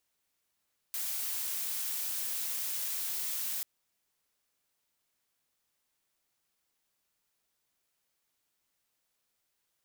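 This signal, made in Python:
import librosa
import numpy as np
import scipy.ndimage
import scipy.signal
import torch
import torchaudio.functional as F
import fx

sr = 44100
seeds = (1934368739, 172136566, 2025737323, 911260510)

y = fx.noise_colour(sr, seeds[0], length_s=2.69, colour='blue', level_db=-35.0)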